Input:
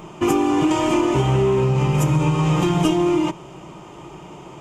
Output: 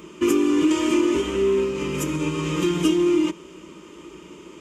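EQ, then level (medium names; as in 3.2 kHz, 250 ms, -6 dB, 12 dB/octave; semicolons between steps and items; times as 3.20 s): high-pass 60 Hz; static phaser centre 310 Hz, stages 4; 0.0 dB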